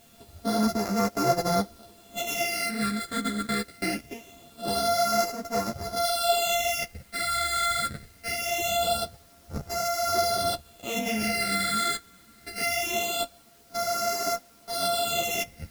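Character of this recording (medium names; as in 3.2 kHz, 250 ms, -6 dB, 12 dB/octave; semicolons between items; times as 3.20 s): a buzz of ramps at a fixed pitch in blocks of 64 samples; phasing stages 8, 0.23 Hz, lowest notch 800–3100 Hz; a quantiser's noise floor 10-bit, dither triangular; a shimmering, thickened sound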